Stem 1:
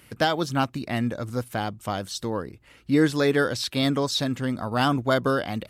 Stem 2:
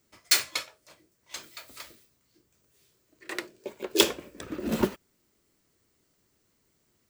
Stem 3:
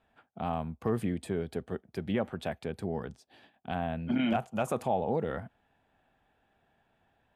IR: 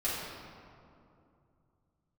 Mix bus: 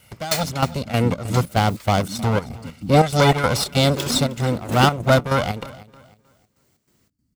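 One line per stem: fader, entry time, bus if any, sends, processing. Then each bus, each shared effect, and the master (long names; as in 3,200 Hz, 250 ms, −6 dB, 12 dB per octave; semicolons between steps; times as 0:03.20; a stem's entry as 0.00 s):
+2.5 dB, 0.00 s, no send, echo send −20.5 dB, lower of the sound and its delayed copy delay 1.4 ms; parametric band 1,700 Hz −6.5 dB 0.28 octaves
−3.5 dB, 0.00 s, no send, echo send −21 dB, no processing
−3.0 dB, 0.00 s, no send, echo send −11 dB, brick-wall band-stop 320–4,200 Hz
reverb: not used
echo: repeating echo 311 ms, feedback 25%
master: high-pass filter 43 Hz; automatic gain control gain up to 10 dB; square-wave tremolo 3.2 Hz, depth 65%, duty 65%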